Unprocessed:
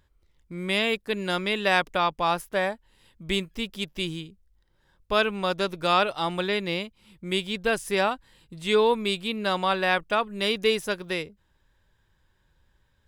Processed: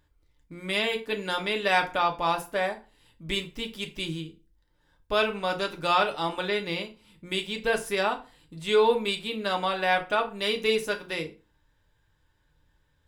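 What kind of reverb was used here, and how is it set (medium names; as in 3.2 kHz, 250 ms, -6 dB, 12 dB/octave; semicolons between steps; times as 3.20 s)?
FDN reverb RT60 0.34 s, low-frequency decay 1.1×, high-frequency decay 0.8×, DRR 3 dB; trim -3 dB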